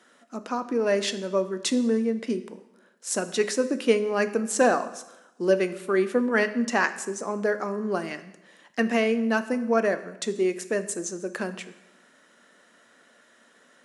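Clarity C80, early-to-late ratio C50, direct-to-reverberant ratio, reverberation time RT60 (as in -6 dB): 16.0 dB, 13.5 dB, 10.5 dB, 0.95 s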